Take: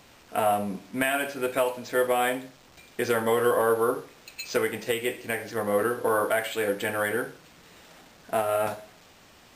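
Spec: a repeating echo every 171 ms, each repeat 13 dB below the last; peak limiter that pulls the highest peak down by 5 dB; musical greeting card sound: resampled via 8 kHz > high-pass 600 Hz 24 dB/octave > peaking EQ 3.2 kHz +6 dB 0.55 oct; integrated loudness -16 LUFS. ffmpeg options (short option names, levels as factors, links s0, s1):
-af "alimiter=limit=0.141:level=0:latency=1,aecho=1:1:171|342|513:0.224|0.0493|0.0108,aresample=8000,aresample=44100,highpass=f=600:w=0.5412,highpass=f=600:w=1.3066,equalizer=f=3200:t=o:w=0.55:g=6,volume=5.62"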